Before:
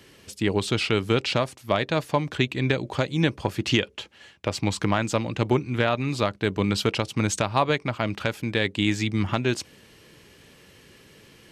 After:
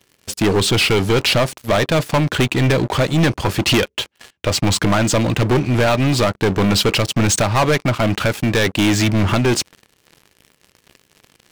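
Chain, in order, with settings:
leveller curve on the samples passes 5
level −3.5 dB

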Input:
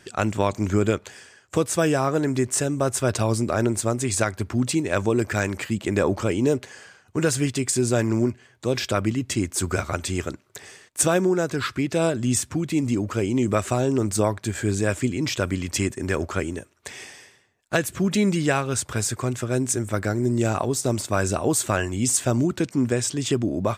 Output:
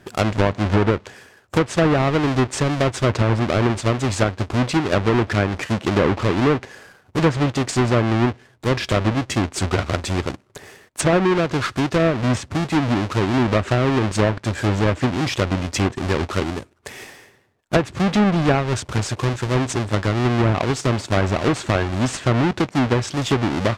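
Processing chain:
each half-wave held at its own peak
treble cut that deepens with the level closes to 2,300 Hz, closed at −12.5 dBFS
one half of a high-frequency compander decoder only

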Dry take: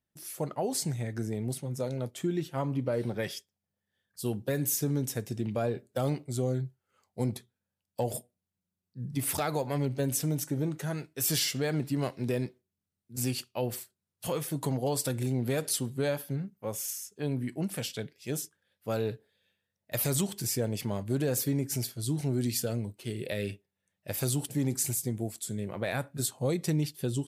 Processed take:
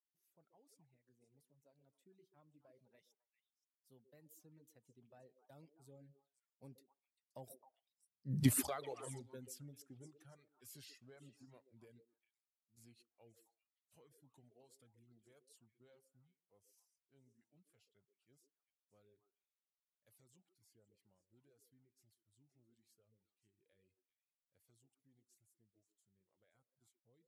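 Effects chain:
source passing by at 0:08.42, 27 m/s, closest 1.4 metres
echo through a band-pass that steps 131 ms, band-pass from 380 Hz, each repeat 1.4 octaves, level −3.5 dB
reverb reduction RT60 1.3 s
level +4.5 dB

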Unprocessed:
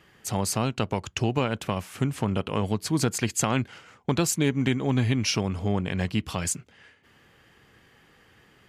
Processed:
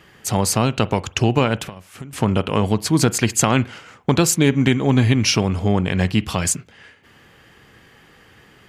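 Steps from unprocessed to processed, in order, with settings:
0:01.66–0:02.13: downward compressor 12 to 1, threshold −40 dBFS, peak gain reduction 20 dB
convolution reverb, pre-delay 43 ms, DRR 19 dB
level +8 dB

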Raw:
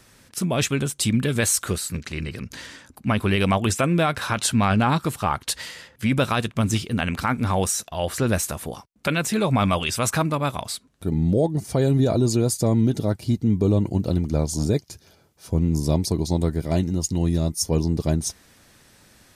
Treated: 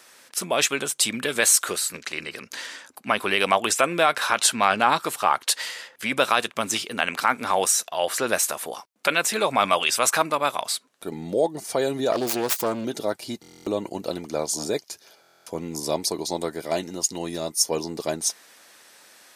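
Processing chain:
0:12.12–0:12.85: phase distortion by the signal itself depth 0.28 ms
high-pass filter 520 Hz 12 dB per octave
buffer that repeats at 0:13.41/0:15.21, samples 1,024, times 10
level +4 dB

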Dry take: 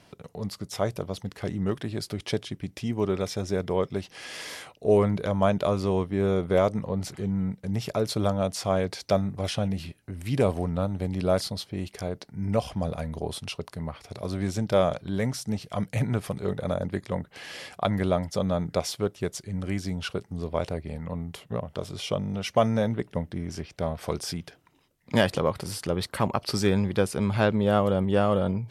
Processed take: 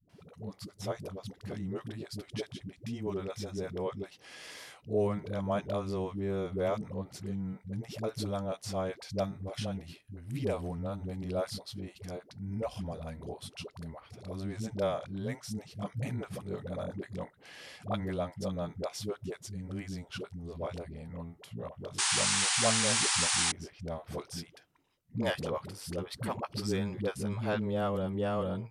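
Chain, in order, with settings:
all-pass dispersion highs, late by 95 ms, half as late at 340 Hz
sound drawn into the spectrogram noise, 0:21.98–0:23.52, 730–10,000 Hz −20 dBFS
level −9 dB

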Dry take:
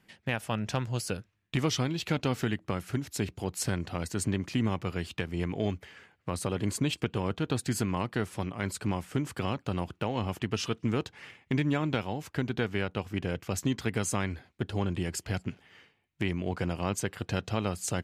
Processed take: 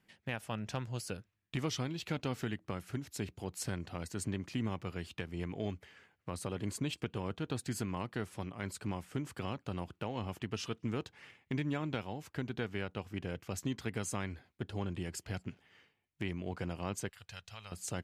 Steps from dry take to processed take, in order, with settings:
0:17.09–0:17.72: guitar amp tone stack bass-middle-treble 10-0-10
level −7.5 dB

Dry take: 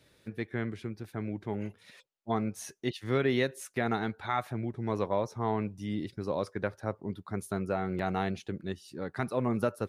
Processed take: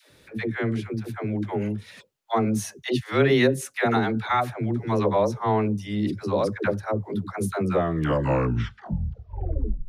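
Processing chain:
turntable brake at the end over 2.30 s
all-pass dispersion lows, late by 107 ms, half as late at 410 Hz
level +8.5 dB

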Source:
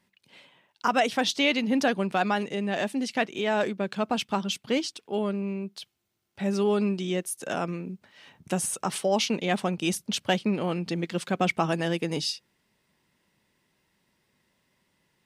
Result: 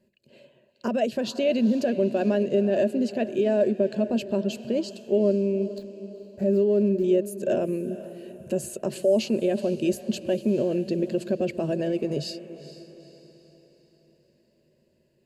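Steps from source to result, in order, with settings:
0:05.78–0:07.04: running median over 15 samples
low shelf with overshoot 730 Hz +10.5 dB, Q 3
brickwall limiter −10 dBFS, peak gain reduction 10 dB
EQ curve with evenly spaced ripples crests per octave 1.4, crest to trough 10 dB
feedback delay with all-pass diffusion 453 ms, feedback 46%, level −14.5 dB
level −7 dB

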